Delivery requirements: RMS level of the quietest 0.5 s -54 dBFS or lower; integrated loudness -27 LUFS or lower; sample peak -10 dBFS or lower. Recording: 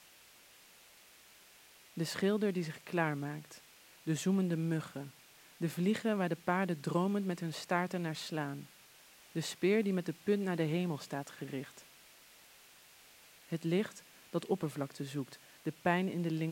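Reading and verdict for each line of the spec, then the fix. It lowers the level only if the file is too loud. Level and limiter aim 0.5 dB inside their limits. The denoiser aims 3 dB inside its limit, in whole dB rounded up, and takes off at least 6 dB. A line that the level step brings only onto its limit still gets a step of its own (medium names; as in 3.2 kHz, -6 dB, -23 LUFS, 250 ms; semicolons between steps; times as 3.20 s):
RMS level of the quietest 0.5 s -60 dBFS: pass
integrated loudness -36.0 LUFS: pass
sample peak -15.0 dBFS: pass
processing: none needed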